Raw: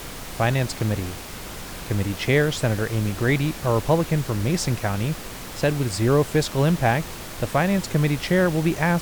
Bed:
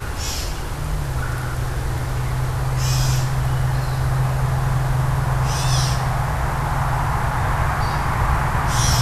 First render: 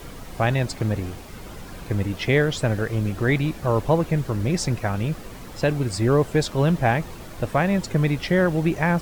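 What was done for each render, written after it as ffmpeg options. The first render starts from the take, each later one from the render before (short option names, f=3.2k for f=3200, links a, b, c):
-af "afftdn=nr=9:nf=-36"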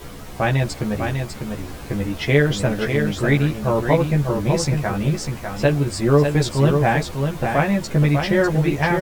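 -filter_complex "[0:a]asplit=2[a][b];[b]adelay=14,volume=-2dB[c];[a][c]amix=inputs=2:normalize=0,aecho=1:1:599:0.531"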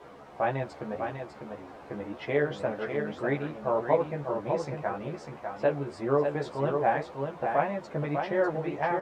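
-af "flanger=delay=7.3:depth=7.4:regen=66:speed=1.8:shape=sinusoidal,bandpass=f=750:t=q:w=1.1:csg=0"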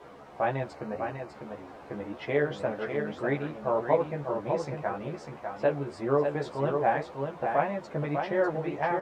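-filter_complex "[0:a]asettb=1/sr,asplit=3[a][b][c];[a]atrim=end=0.754[d];[b]atrim=start=0.75:end=1.31,asetpts=PTS-STARTPTS,afade=t=in:d=0.004:c=qsin,afade=t=out:st=0.556:d=0.004:c=qsin,asuperstop=centerf=3400:order=4:qfactor=5.6[e];[c]atrim=start=1.306[f];[d][e]acrossfade=d=0.004:c1=hsin:c2=qsin[g];[g][f]acrossfade=d=0.004:c1=qsin:c2=hsin"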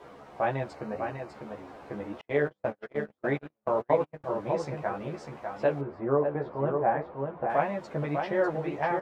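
-filter_complex "[0:a]asettb=1/sr,asplit=3[a][b][c];[a]atrim=end=2.214[d];[b]atrim=start=2.21:end=4.24,asetpts=PTS-STARTPTS,afade=t=in:d=0.004:c=qsin,afade=t=out:st=2.026:d=0.004:c=qsin,agate=range=-44dB:threshold=-31dB:ratio=16:release=100:detection=peak[e];[c]atrim=start=4.236[f];[d][e]acrossfade=d=0.004:c1=hsin:c2=qsin[g];[g][f]acrossfade=d=0.004:c1=qsin:c2=hsin,asettb=1/sr,asplit=3[h][i][j];[h]atrim=end=5.814[k];[i]atrim=start=5.81:end=7.5,asetpts=PTS-STARTPTS,afade=t=in:d=0.004:c=qsin,afade=t=out:st=1.686:d=0.004:c=qsin,lowpass=1.5k[l];[j]atrim=start=7.496[m];[k][l]acrossfade=d=0.004:c1=hsin:c2=qsin[n];[n][m]acrossfade=d=0.004:c1=qsin:c2=hsin"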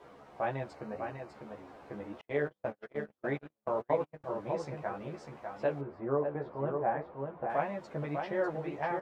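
-af "volume=-5.5dB"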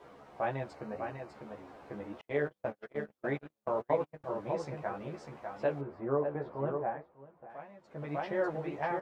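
-filter_complex "[0:a]asplit=3[a][b][c];[a]atrim=end=7.08,asetpts=PTS-STARTPTS,afade=t=out:st=6.72:d=0.36:silence=0.16788[d];[b]atrim=start=7.08:end=7.83,asetpts=PTS-STARTPTS,volume=-15.5dB[e];[c]atrim=start=7.83,asetpts=PTS-STARTPTS,afade=t=in:d=0.36:silence=0.16788[f];[d][e][f]concat=n=3:v=0:a=1"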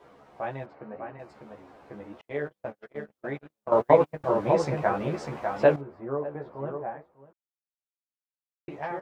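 -filter_complex "[0:a]asplit=3[a][b][c];[a]afade=t=out:st=0.65:d=0.02[d];[b]highpass=120,lowpass=2.3k,afade=t=in:st=0.65:d=0.02,afade=t=out:st=1.18:d=0.02[e];[c]afade=t=in:st=1.18:d=0.02[f];[d][e][f]amix=inputs=3:normalize=0,asplit=5[g][h][i][j][k];[g]atrim=end=3.722[l];[h]atrim=start=3.718:end=5.762,asetpts=PTS-STARTPTS,volume=12dB[m];[i]atrim=start=5.758:end=7.33,asetpts=PTS-STARTPTS,afade=t=out:st=1.568:d=0.004:c=hsin[n];[j]atrim=start=7.33:end=8.68,asetpts=PTS-STARTPTS,volume=0[o];[k]atrim=start=8.68,asetpts=PTS-STARTPTS,afade=t=in:d=0.004:c=hsin[p];[l][m]acrossfade=d=0.004:c1=hsin:c2=hsin[q];[n][o][p]concat=n=3:v=0:a=1[r];[q][r]acrossfade=d=0.004:c1=hsin:c2=hsin"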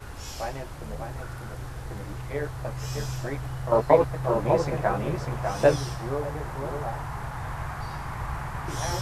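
-filter_complex "[1:a]volume=-13.5dB[a];[0:a][a]amix=inputs=2:normalize=0"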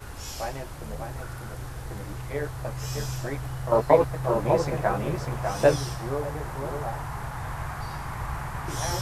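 -af "highshelf=f=7.7k:g=6"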